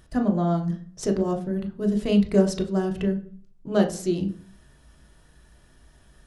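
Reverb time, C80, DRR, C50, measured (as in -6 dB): 0.45 s, 16.5 dB, 3.5 dB, 12.5 dB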